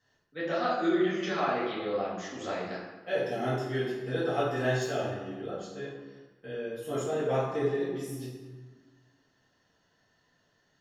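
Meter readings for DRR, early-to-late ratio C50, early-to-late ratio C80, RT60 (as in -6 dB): -10.5 dB, 0.5 dB, 3.5 dB, 1.4 s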